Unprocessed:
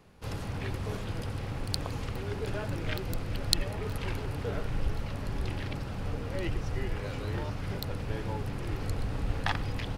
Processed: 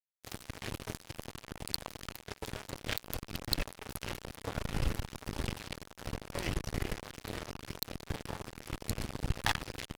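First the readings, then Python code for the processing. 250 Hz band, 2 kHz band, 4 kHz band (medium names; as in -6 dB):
-5.0 dB, -1.5 dB, -1.5 dB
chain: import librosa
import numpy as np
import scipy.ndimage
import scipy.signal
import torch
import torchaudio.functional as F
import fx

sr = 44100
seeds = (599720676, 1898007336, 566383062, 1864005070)

p1 = fx.high_shelf(x, sr, hz=3900.0, db=11.0)
p2 = fx.rider(p1, sr, range_db=3, speed_s=2.0)
p3 = p1 + (p2 * 10.0 ** (1.0 / 20.0))
p4 = fx.fuzz(p3, sr, gain_db=13.0, gate_db=-22.0)
y = p4 * 10.0 ** (-4.0 / 20.0)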